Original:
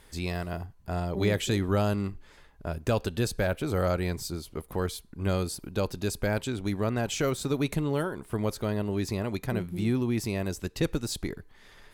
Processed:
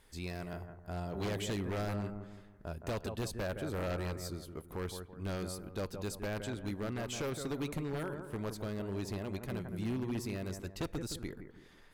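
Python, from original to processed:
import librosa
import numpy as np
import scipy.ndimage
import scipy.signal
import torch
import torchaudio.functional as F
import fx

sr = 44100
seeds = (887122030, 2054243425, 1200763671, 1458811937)

y = fx.echo_bbd(x, sr, ms=166, stages=2048, feedback_pct=40, wet_db=-8.5)
y = 10.0 ** (-21.0 / 20.0) * (np.abs((y / 10.0 ** (-21.0 / 20.0) + 3.0) % 4.0 - 2.0) - 1.0)
y = y * 10.0 ** (-8.5 / 20.0)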